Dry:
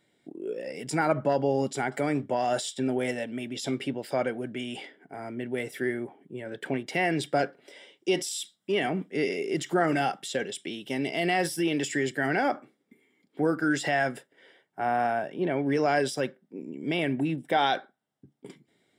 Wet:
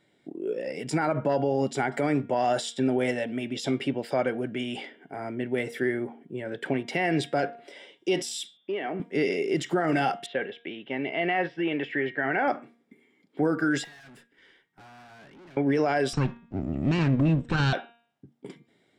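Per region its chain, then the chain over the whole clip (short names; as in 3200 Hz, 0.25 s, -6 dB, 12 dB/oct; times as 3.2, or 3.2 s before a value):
8.57–9 HPF 310 Hz + compressor 3:1, threshold -30 dBFS + air absorption 300 m
10.26–12.48 LPF 2700 Hz 24 dB/oct + low shelf 340 Hz -9 dB
13.84–15.57 bell 610 Hz -13.5 dB 0.96 oct + compressor 4:1, threshold -33 dBFS + tube stage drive 52 dB, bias 0.35
16.13–17.73 minimum comb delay 0.72 ms + brick-wall FIR low-pass 8400 Hz + bell 130 Hz +10 dB 2.2 oct
whole clip: high shelf 7700 Hz -11.5 dB; de-hum 234.6 Hz, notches 16; limiter -19 dBFS; gain +3.5 dB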